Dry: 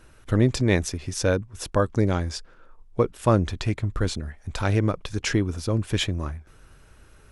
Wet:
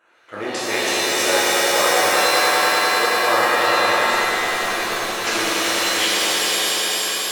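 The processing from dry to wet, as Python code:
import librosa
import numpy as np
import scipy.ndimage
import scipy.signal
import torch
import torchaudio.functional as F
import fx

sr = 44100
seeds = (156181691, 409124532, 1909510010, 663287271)

y = fx.wiener(x, sr, points=9)
y = scipy.signal.sosfilt(scipy.signal.butter(2, 710.0, 'highpass', fs=sr, output='sos'), y)
y = fx.echo_swell(y, sr, ms=99, loudest=5, wet_db=-5.0)
y = fx.ring_mod(y, sr, carrier_hz=100.0, at=(3.98, 5.27))
y = fx.rev_shimmer(y, sr, seeds[0], rt60_s=1.7, semitones=7, shimmer_db=-2, drr_db=-8.0)
y = F.gain(torch.from_numpy(y), -2.0).numpy()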